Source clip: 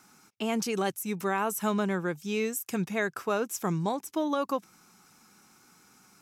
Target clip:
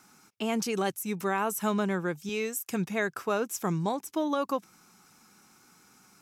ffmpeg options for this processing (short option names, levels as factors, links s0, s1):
-filter_complex "[0:a]asettb=1/sr,asplit=3[s0][s1][s2];[s0]atrim=end=2.294[s3];[s1]atrim=start=2.29:end=2.7,asetpts=PTS-STARTPTS,afade=t=in:d=0.004:c=qsin,afade=t=out:st=0.406:d=0.004:c=qsin,highpass=f=310:p=1[s4];[s2]atrim=start=2.696[s5];[s3][s4]acrossfade=d=0.004:c1=hsin:c2=qsin[s6];[s6][s5]acrossfade=d=0.004:c1=qsin:c2=hsin"